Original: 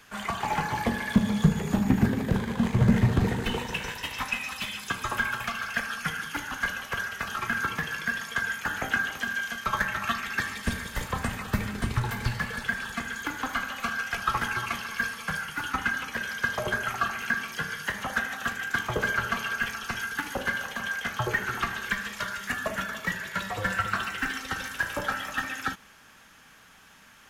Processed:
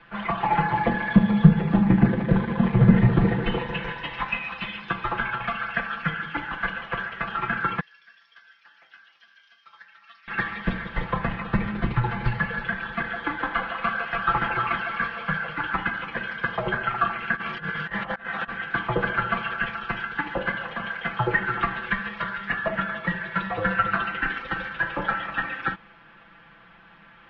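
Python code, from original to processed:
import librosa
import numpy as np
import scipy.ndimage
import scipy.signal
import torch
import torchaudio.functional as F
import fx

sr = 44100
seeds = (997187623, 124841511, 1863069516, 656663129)

y = fx.bandpass_q(x, sr, hz=5400.0, q=5.7, at=(7.8, 10.28))
y = fx.echo_stepped(y, sr, ms=157, hz=560.0, octaves=1.4, feedback_pct=70, wet_db=-0.5, at=(12.97, 15.8), fade=0.02)
y = fx.over_compress(y, sr, threshold_db=-36.0, ratio=-0.5, at=(17.35, 18.48), fade=0.02)
y = scipy.signal.sosfilt(scipy.signal.bessel(8, 2100.0, 'lowpass', norm='mag', fs=sr, output='sos'), y)
y = y + 0.94 * np.pad(y, (int(5.9 * sr / 1000.0), 0))[:len(y)]
y = F.gain(torch.from_numpy(y), 2.5).numpy()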